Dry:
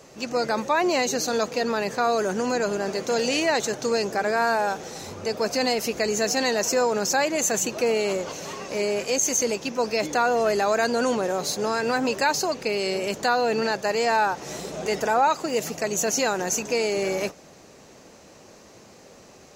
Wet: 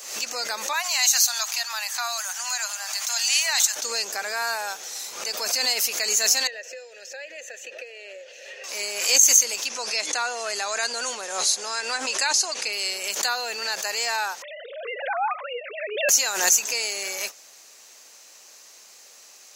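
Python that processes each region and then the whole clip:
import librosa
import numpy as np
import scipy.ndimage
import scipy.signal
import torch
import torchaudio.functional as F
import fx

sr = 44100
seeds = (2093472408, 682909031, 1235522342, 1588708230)

y = fx.chain(x, sr, fx.steep_highpass(hz=700.0, slope=48),
    fx.high_shelf(hz=6400.0, db=5.0), at=(0.73, 3.76))
y = fx.chain(y, sr, fx.vowel_filter(vowel='e'),
    fx.band_squash(depth_pct=100), at=(6.47, 8.64))
y = fx.chain(y, sr, fx.lowpass(hz=12000.0, slope=12),
    fx.resample_bad(factor=2, down='none', up='filtered'), at=(9.66, 12.73))
y = fx.chain(y, sr, fx.sine_speech(),
    fx.high_shelf(hz=2100.0, db=-9.0),
    fx.env_flatten(amount_pct=50), at=(14.42, 16.09))
y = fx.highpass(y, sr, hz=910.0, slope=6)
y = fx.tilt_eq(y, sr, slope=4.0)
y = fx.pre_swell(y, sr, db_per_s=69.0)
y = y * 10.0 ** (-3.0 / 20.0)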